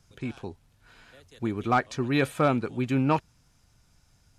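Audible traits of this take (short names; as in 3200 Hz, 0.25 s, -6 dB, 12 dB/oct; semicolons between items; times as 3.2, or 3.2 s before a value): noise floor -64 dBFS; spectral tilt -6.0 dB/oct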